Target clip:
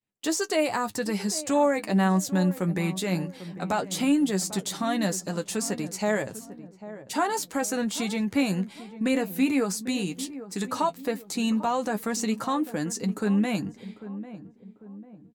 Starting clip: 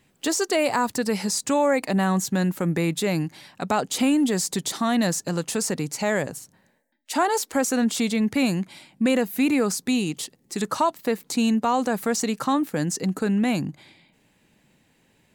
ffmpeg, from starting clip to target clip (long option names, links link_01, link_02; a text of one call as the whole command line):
ffmpeg -i in.wav -filter_complex "[0:a]agate=range=-33dB:threshold=-49dB:ratio=3:detection=peak,flanger=delay=9.3:depth=1.8:regen=34:speed=0.16:shape=triangular,asplit=2[link_01][link_02];[link_02]adelay=796,lowpass=frequency=840:poles=1,volume=-13dB,asplit=2[link_03][link_04];[link_04]adelay=796,lowpass=frequency=840:poles=1,volume=0.47,asplit=2[link_05][link_06];[link_06]adelay=796,lowpass=frequency=840:poles=1,volume=0.47,asplit=2[link_07][link_08];[link_08]adelay=796,lowpass=frequency=840:poles=1,volume=0.47,asplit=2[link_09][link_10];[link_10]adelay=796,lowpass=frequency=840:poles=1,volume=0.47[link_11];[link_03][link_05][link_07][link_09][link_11]amix=inputs=5:normalize=0[link_12];[link_01][link_12]amix=inputs=2:normalize=0" out.wav